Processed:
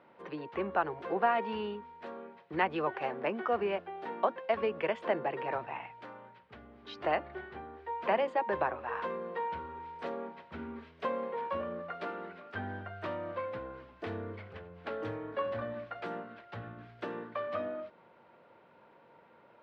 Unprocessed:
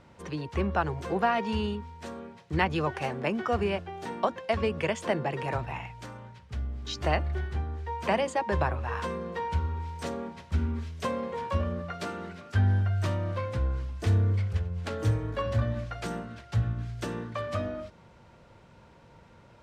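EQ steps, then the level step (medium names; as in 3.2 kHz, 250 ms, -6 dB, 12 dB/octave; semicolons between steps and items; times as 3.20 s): high-pass 350 Hz 12 dB/octave; distance through air 400 m; 0.0 dB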